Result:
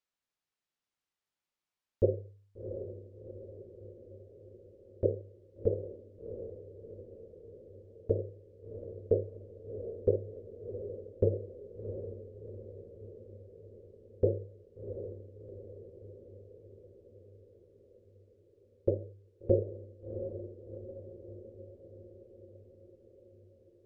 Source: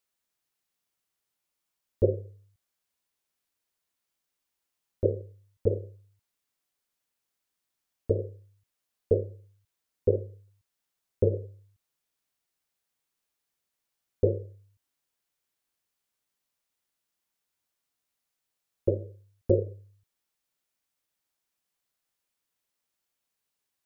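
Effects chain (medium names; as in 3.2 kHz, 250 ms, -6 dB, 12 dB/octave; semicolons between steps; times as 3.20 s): distance through air 71 m; echo that smears into a reverb 722 ms, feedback 63%, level -9.5 dB; dynamic bell 740 Hz, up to +3 dB, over -42 dBFS, Q 1; trim -4.5 dB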